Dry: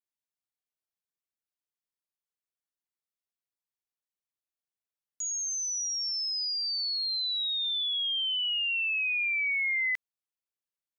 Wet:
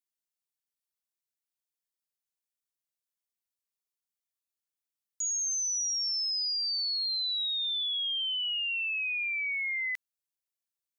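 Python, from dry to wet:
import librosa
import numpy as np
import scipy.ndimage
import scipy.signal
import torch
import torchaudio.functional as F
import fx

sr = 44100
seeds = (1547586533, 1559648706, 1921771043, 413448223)

y = fx.high_shelf(x, sr, hz=3100.0, db=10.5)
y = y * librosa.db_to_amplitude(-7.0)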